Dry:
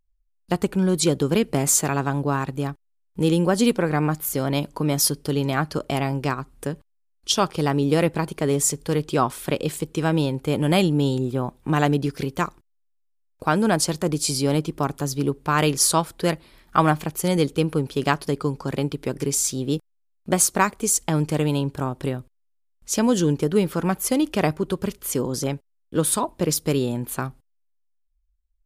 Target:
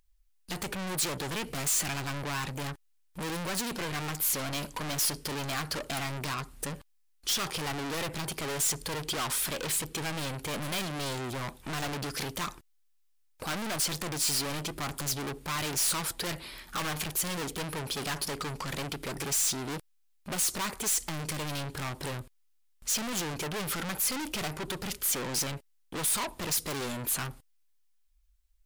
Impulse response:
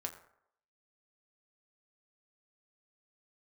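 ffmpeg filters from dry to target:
-af "acontrast=88,aeval=exprs='(tanh(35.5*val(0)+0.2)-tanh(0.2))/35.5':channel_layout=same,tiltshelf=frequency=970:gain=-5"

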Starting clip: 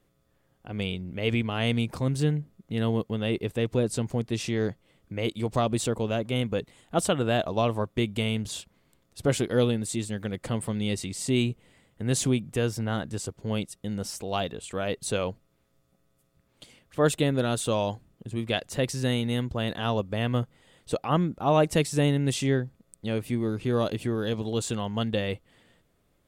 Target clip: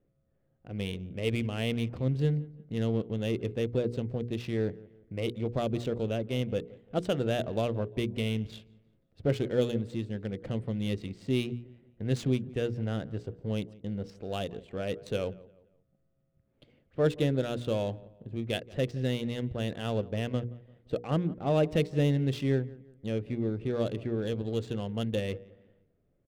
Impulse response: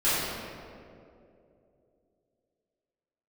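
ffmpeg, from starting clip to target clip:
-filter_complex "[0:a]equalizer=frequency=125:width_type=o:width=1:gain=3,equalizer=frequency=500:width_type=o:width=1:gain=4,equalizer=frequency=1000:width_type=o:width=1:gain=-10,equalizer=frequency=8000:width_type=o:width=1:gain=-7,asplit=2[link_01][link_02];[link_02]aecho=0:1:173|346|519:0.1|0.037|0.0137[link_03];[link_01][link_03]amix=inputs=2:normalize=0,adynamicsmooth=sensitivity=7:basefreq=1600,bandreject=frequency=60:width_type=h:width=6,bandreject=frequency=120:width_type=h:width=6,bandreject=frequency=180:width_type=h:width=6,bandreject=frequency=240:width_type=h:width=6,bandreject=frequency=300:width_type=h:width=6,bandreject=frequency=360:width_type=h:width=6,bandreject=frequency=420:width_type=h:width=6,bandreject=frequency=480:width_type=h:width=6,volume=-4dB"

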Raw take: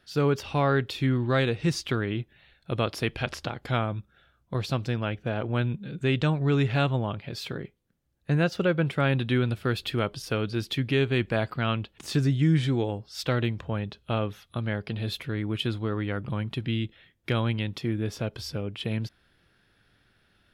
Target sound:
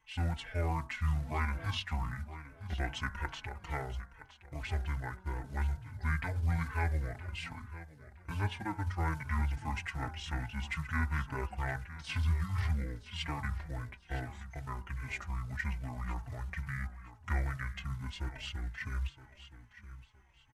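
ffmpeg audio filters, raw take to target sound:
ffmpeg -i in.wav -filter_complex "[0:a]equalizer=frequency=470:width=0.54:gain=-13.5,bandreject=frequency=78.95:width_type=h:width=4,bandreject=frequency=157.9:width_type=h:width=4,bandreject=frequency=236.85:width_type=h:width=4,bandreject=frequency=315.8:width_type=h:width=4,bandreject=frequency=394.75:width_type=h:width=4,bandreject=frequency=473.7:width_type=h:width=4,bandreject=frequency=552.65:width_type=h:width=4,bandreject=frequency=631.6:width_type=h:width=4,bandreject=frequency=710.55:width_type=h:width=4,bandreject=frequency=789.5:width_type=h:width=4,bandreject=frequency=868.45:width_type=h:width=4,bandreject=frequency=947.4:width_type=h:width=4,bandreject=frequency=1026.35:width_type=h:width=4,bandreject=frequency=1105.3:width_type=h:width=4,bandreject=frequency=1184.25:width_type=h:width=4,bandreject=frequency=1263.2:width_type=h:width=4,bandreject=frequency=1342.15:width_type=h:width=4,bandreject=frequency=1421.1:width_type=h:width=4,bandreject=frequency=1500.05:width_type=h:width=4,bandreject=frequency=1579:width_type=h:width=4,bandreject=frequency=1657.95:width_type=h:width=4,bandreject=frequency=1736.9:width_type=h:width=4,bandreject=frequency=1815.85:width_type=h:width=4,bandreject=frequency=1894.8:width_type=h:width=4,bandreject=frequency=1973.75:width_type=h:width=4,bandreject=frequency=2052.7:width_type=h:width=4,bandreject=frequency=2131.65:width_type=h:width=4,bandreject=frequency=2210.6:width_type=h:width=4,bandreject=frequency=2289.55:width_type=h:width=4,bandreject=frequency=2368.5:width_type=h:width=4,bandreject=frequency=2447.45:width_type=h:width=4,bandreject=frequency=2526.4:width_type=h:width=4,bandreject=frequency=2605.35:width_type=h:width=4,bandreject=frequency=2684.3:width_type=h:width=4,bandreject=frequency=2763.25:width_type=h:width=4,bandreject=frequency=2842.2:width_type=h:width=4,acrusher=bits=7:mode=log:mix=0:aa=0.000001,asetrate=26222,aresample=44100,atempo=1.68179,asplit=2[link_01][link_02];[link_02]aecho=0:1:967|1934|2901:0.2|0.0559|0.0156[link_03];[link_01][link_03]amix=inputs=2:normalize=0,asplit=2[link_04][link_05];[link_05]adelay=4,afreqshift=-2.4[link_06];[link_04][link_06]amix=inputs=2:normalize=1" out.wav

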